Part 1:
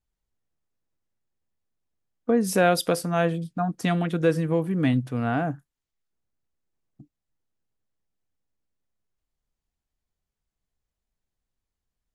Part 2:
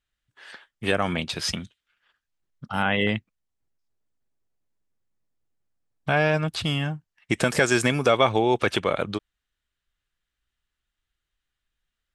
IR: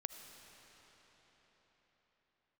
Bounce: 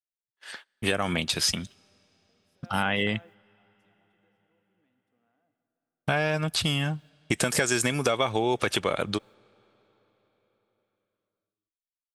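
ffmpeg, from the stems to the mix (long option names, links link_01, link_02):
-filter_complex "[0:a]highpass=290,acompressor=threshold=-31dB:ratio=6,volume=-19dB,asplit=2[link_01][link_02];[link_02]volume=-21.5dB[link_03];[1:a]agate=range=-35dB:threshold=-46dB:ratio=16:detection=peak,highshelf=frequency=5700:gain=12,acompressor=threshold=-23dB:ratio=4,volume=1dB,asplit=3[link_04][link_05][link_06];[link_05]volume=-22.5dB[link_07];[link_06]apad=whole_len=540074[link_08];[link_01][link_08]sidechaingate=range=-33dB:threshold=-44dB:ratio=16:detection=peak[link_09];[2:a]atrim=start_sample=2205[link_10];[link_03][link_07]amix=inputs=2:normalize=0[link_11];[link_11][link_10]afir=irnorm=-1:irlink=0[link_12];[link_09][link_04][link_12]amix=inputs=3:normalize=0"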